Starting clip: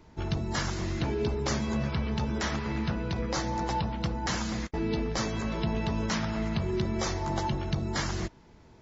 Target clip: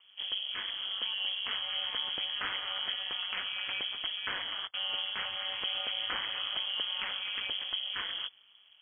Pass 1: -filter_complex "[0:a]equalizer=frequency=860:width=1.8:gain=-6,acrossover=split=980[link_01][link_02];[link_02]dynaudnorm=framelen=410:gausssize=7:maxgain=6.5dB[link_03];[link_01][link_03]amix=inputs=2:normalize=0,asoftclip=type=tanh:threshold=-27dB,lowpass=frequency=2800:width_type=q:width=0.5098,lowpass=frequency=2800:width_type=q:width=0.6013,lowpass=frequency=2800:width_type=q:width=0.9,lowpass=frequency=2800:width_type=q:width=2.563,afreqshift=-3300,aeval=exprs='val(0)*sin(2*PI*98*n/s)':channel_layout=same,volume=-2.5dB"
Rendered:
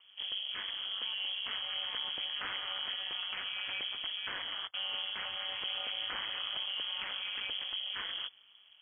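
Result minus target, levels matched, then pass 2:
soft clipping: distortion +16 dB
-filter_complex "[0:a]equalizer=frequency=860:width=1.8:gain=-6,acrossover=split=980[link_01][link_02];[link_02]dynaudnorm=framelen=410:gausssize=7:maxgain=6.5dB[link_03];[link_01][link_03]amix=inputs=2:normalize=0,asoftclip=type=tanh:threshold=-15dB,lowpass=frequency=2800:width_type=q:width=0.5098,lowpass=frequency=2800:width_type=q:width=0.6013,lowpass=frequency=2800:width_type=q:width=0.9,lowpass=frequency=2800:width_type=q:width=2.563,afreqshift=-3300,aeval=exprs='val(0)*sin(2*PI*98*n/s)':channel_layout=same,volume=-2.5dB"

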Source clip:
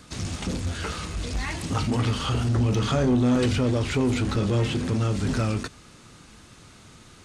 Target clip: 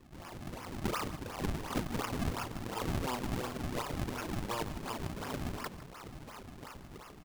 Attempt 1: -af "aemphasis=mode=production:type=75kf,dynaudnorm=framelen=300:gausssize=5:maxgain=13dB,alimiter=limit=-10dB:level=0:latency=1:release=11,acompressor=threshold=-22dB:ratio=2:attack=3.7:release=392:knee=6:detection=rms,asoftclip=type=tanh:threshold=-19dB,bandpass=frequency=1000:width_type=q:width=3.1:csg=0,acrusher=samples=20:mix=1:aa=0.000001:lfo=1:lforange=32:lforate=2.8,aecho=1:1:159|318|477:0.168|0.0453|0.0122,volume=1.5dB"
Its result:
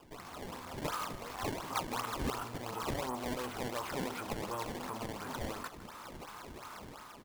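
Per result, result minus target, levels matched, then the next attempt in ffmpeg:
sample-and-hold swept by an LFO: distortion −8 dB; downward compressor: peak gain reduction +3.5 dB
-af "aemphasis=mode=production:type=75kf,dynaudnorm=framelen=300:gausssize=5:maxgain=13dB,alimiter=limit=-10dB:level=0:latency=1:release=11,acompressor=threshold=-22dB:ratio=2:attack=3.7:release=392:knee=6:detection=rms,asoftclip=type=tanh:threshold=-19dB,bandpass=frequency=1000:width_type=q:width=3.1:csg=0,acrusher=samples=53:mix=1:aa=0.000001:lfo=1:lforange=84.8:lforate=2.8,aecho=1:1:159|318|477:0.168|0.0453|0.0122,volume=1.5dB"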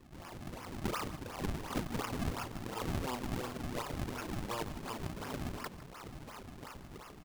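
downward compressor: peak gain reduction +3.5 dB
-af "aemphasis=mode=production:type=75kf,dynaudnorm=framelen=300:gausssize=5:maxgain=13dB,alimiter=limit=-10dB:level=0:latency=1:release=11,acompressor=threshold=-15dB:ratio=2:attack=3.7:release=392:knee=6:detection=rms,asoftclip=type=tanh:threshold=-19dB,bandpass=frequency=1000:width_type=q:width=3.1:csg=0,acrusher=samples=53:mix=1:aa=0.000001:lfo=1:lforange=84.8:lforate=2.8,aecho=1:1:159|318|477:0.168|0.0453|0.0122,volume=1.5dB"

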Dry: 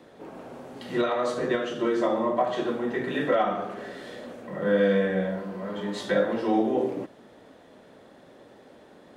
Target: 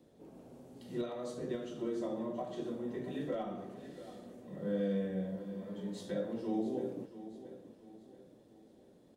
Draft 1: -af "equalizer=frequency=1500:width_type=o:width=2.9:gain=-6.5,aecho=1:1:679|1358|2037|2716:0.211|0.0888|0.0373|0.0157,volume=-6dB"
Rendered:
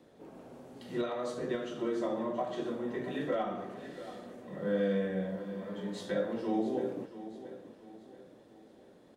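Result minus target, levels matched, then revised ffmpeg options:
2,000 Hz band +6.0 dB
-af "equalizer=frequency=1500:width_type=o:width=2.9:gain=-17,aecho=1:1:679|1358|2037|2716:0.211|0.0888|0.0373|0.0157,volume=-6dB"

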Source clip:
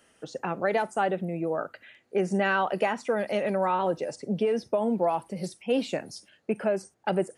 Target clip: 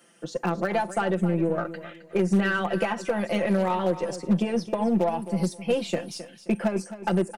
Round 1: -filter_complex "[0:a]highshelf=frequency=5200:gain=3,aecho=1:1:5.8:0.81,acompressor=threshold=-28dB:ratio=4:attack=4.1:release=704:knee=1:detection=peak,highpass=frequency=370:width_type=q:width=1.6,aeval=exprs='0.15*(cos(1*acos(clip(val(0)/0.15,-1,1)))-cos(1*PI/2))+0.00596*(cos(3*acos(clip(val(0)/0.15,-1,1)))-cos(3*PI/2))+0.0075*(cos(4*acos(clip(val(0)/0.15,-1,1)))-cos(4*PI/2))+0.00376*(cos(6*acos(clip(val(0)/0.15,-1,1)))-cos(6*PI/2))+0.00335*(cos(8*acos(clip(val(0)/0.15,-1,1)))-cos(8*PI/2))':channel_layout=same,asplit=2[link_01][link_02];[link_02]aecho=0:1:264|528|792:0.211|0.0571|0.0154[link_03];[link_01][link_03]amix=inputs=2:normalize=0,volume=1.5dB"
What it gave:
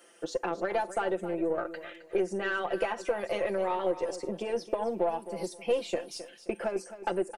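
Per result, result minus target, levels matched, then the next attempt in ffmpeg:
250 Hz band −6.0 dB; downward compressor: peak gain reduction +5 dB
-filter_complex "[0:a]highshelf=frequency=5200:gain=3,aecho=1:1:5.8:0.81,acompressor=threshold=-28dB:ratio=4:attack=4.1:release=704:knee=1:detection=peak,highpass=frequency=180:width_type=q:width=1.6,aeval=exprs='0.15*(cos(1*acos(clip(val(0)/0.15,-1,1)))-cos(1*PI/2))+0.00596*(cos(3*acos(clip(val(0)/0.15,-1,1)))-cos(3*PI/2))+0.0075*(cos(4*acos(clip(val(0)/0.15,-1,1)))-cos(4*PI/2))+0.00376*(cos(6*acos(clip(val(0)/0.15,-1,1)))-cos(6*PI/2))+0.00335*(cos(8*acos(clip(val(0)/0.15,-1,1)))-cos(8*PI/2))':channel_layout=same,asplit=2[link_01][link_02];[link_02]aecho=0:1:264|528|792:0.211|0.0571|0.0154[link_03];[link_01][link_03]amix=inputs=2:normalize=0,volume=1.5dB"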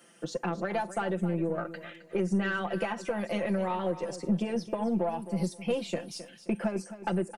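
downward compressor: peak gain reduction +5 dB
-filter_complex "[0:a]highshelf=frequency=5200:gain=3,aecho=1:1:5.8:0.81,acompressor=threshold=-21dB:ratio=4:attack=4.1:release=704:knee=1:detection=peak,highpass=frequency=180:width_type=q:width=1.6,aeval=exprs='0.15*(cos(1*acos(clip(val(0)/0.15,-1,1)))-cos(1*PI/2))+0.00596*(cos(3*acos(clip(val(0)/0.15,-1,1)))-cos(3*PI/2))+0.0075*(cos(4*acos(clip(val(0)/0.15,-1,1)))-cos(4*PI/2))+0.00376*(cos(6*acos(clip(val(0)/0.15,-1,1)))-cos(6*PI/2))+0.00335*(cos(8*acos(clip(val(0)/0.15,-1,1)))-cos(8*PI/2))':channel_layout=same,asplit=2[link_01][link_02];[link_02]aecho=0:1:264|528|792:0.211|0.0571|0.0154[link_03];[link_01][link_03]amix=inputs=2:normalize=0,volume=1.5dB"

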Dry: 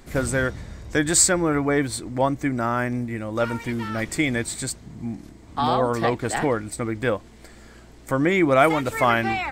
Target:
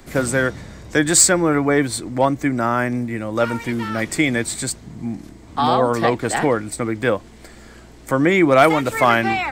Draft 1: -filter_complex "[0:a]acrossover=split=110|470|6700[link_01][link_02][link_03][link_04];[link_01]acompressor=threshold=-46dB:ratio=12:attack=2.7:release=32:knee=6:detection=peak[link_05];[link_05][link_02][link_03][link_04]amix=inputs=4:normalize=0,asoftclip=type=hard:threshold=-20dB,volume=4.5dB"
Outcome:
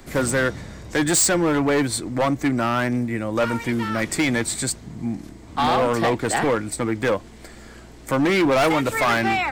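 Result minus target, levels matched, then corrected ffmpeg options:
hard clipping: distortion +19 dB
-filter_complex "[0:a]acrossover=split=110|470|6700[link_01][link_02][link_03][link_04];[link_01]acompressor=threshold=-46dB:ratio=12:attack=2.7:release=32:knee=6:detection=peak[link_05];[link_05][link_02][link_03][link_04]amix=inputs=4:normalize=0,asoftclip=type=hard:threshold=-9dB,volume=4.5dB"

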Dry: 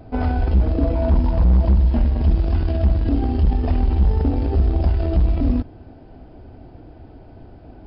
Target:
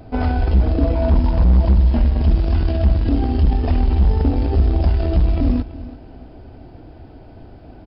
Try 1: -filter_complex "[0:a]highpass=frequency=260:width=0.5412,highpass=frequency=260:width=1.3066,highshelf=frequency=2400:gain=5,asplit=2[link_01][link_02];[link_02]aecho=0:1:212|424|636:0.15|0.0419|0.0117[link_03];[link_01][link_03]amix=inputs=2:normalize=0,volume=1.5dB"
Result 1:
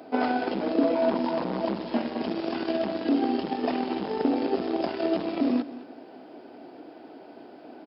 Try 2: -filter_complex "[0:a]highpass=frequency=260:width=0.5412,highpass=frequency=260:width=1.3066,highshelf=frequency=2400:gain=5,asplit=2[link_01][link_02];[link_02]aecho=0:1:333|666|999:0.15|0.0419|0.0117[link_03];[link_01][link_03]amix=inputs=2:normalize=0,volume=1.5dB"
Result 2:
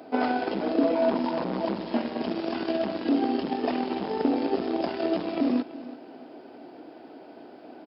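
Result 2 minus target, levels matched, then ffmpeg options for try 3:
250 Hz band +6.5 dB
-filter_complex "[0:a]highshelf=frequency=2400:gain=5,asplit=2[link_01][link_02];[link_02]aecho=0:1:333|666|999:0.15|0.0419|0.0117[link_03];[link_01][link_03]amix=inputs=2:normalize=0,volume=1.5dB"

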